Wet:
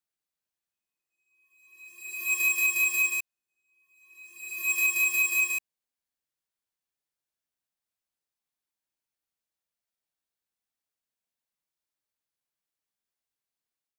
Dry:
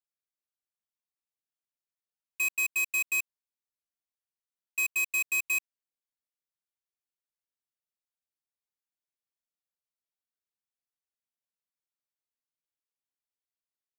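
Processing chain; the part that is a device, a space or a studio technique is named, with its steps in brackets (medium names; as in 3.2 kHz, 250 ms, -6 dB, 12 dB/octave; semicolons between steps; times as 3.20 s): reverse reverb (reverse; reverberation RT60 1.4 s, pre-delay 54 ms, DRR -3.5 dB; reverse); trim -1.5 dB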